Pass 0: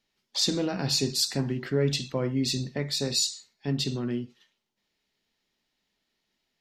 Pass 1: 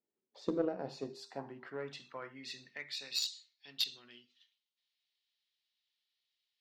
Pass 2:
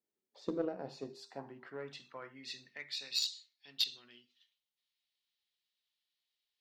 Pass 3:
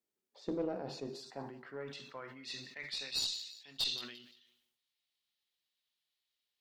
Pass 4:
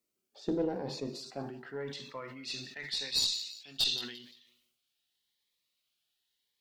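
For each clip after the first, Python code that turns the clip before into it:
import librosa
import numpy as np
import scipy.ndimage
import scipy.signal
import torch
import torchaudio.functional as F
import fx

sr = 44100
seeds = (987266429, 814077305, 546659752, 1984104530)

y1 = fx.filter_sweep_bandpass(x, sr, from_hz=370.0, to_hz=3600.0, start_s=0.29, end_s=3.52, q=2.1)
y1 = fx.cheby_harmonics(y1, sr, harmonics=(3,), levels_db=(-15,), full_scale_db=-19.5)
y1 = fx.hum_notches(y1, sr, base_hz=50, count=8)
y1 = y1 * librosa.db_to_amplitude(3.5)
y2 = fx.dynamic_eq(y1, sr, hz=4100.0, q=0.8, threshold_db=-48.0, ratio=4.0, max_db=4)
y2 = y2 * librosa.db_to_amplitude(-2.5)
y3 = fx.echo_feedback(y2, sr, ms=173, feedback_pct=34, wet_db=-21.0)
y3 = fx.tube_stage(y3, sr, drive_db=27.0, bias=0.3)
y3 = fx.sustainer(y3, sr, db_per_s=62.0)
y3 = y3 * librosa.db_to_amplitude(1.0)
y4 = fx.notch_cascade(y3, sr, direction='rising', hz=0.88)
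y4 = y4 * librosa.db_to_amplitude(6.0)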